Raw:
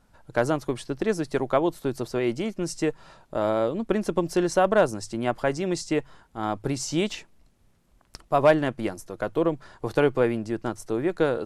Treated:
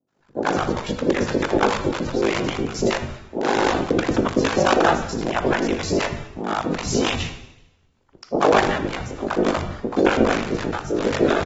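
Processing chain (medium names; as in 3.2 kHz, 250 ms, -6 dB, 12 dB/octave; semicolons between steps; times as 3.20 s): cycle switcher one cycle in 3, inverted; gate -45 dBFS, range -7 dB; three bands offset in time mids, highs, lows 80/200 ms, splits 160/610 Hz; ring modulator 25 Hz; plate-style reverb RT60 0.91 s, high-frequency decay 1×, DRR 7.5 dB; level rider gain up to 6 dB; trim +2 dB; AAC 24 kbps 44.1 kHz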